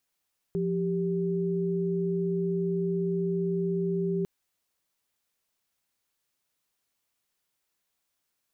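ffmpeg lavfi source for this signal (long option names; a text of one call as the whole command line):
ffmpeg -f lavfi -i "aevalsrc='0.0398*(sin(2*PI*174.61*t)+sin(2*PI*392*t))':duration=3.7:sample_rate=44100" out.wav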